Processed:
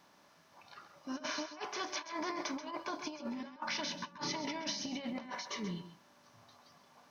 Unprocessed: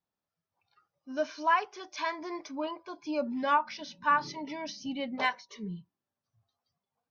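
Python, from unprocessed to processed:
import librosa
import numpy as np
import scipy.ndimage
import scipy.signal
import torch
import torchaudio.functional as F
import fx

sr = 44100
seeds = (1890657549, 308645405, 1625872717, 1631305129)

y = fx.bin_compress(x, sr, power=0.6)
y = fx.over_compress(y, sr, threshold_db=-34.0, ratio=-0.5)
y = fx.high_shelf(y, sr, hz=4400.0, db=9.0)
y = y + 10.0 ** (-11.0 / 20.0) * np.pad(y, (int(132 * sr / 1000.0), 0))[:len(y)]
y = y * 10.0 ** (-7.5 / 20.0)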